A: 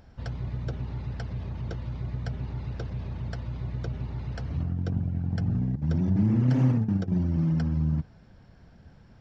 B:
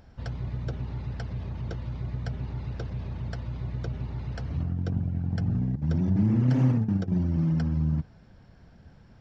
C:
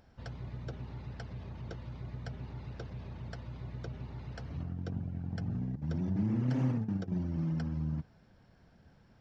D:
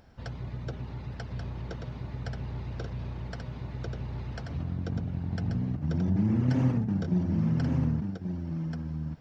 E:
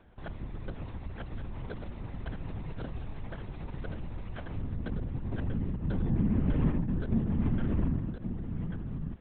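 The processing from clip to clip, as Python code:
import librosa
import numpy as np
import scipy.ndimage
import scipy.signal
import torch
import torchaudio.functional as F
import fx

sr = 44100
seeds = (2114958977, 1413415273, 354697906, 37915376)

y1 = x
y2 = fx.low_shelf(y1, sr, hz=140.0, db=-6.5)
y2 = y2 * 10.0 ** (-5.5 / 20.0)
y3 = y2 + 10.0 ** (-5.0 / 20.0) * np.pad(y2, (int(1134 * sr / 1000.0), 0))[:len(y2)]
y3 = y3 * 10.0 ** (5.0 / 20.0)
y4 = fx.lpc_vocoder(y3, sr, seeds[0], excitation='whisper', order=10)
y4 = y4 * 10.0 ** (-1.5 / 20.0)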